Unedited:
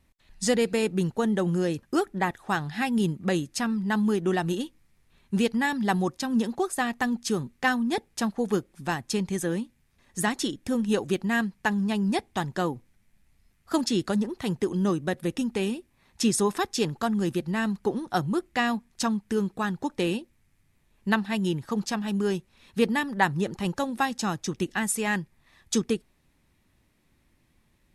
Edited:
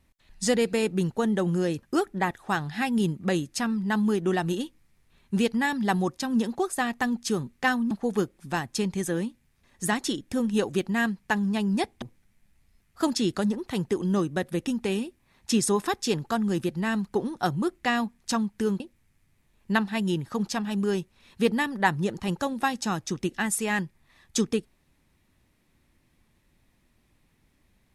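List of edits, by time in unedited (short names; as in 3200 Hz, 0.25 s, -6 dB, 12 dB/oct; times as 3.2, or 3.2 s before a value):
7.91–8.26 cut
12.37–12.73 cut
19.51–20.17 cut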